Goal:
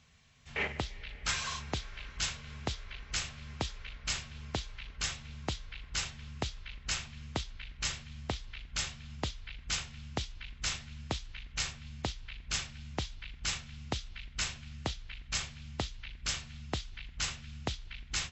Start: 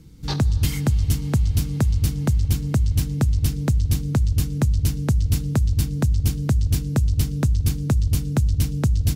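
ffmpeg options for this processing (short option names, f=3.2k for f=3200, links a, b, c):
-af "highpass=f=1.1k:p=1,asetrate=22050,aresample=44100,volume=-3dB"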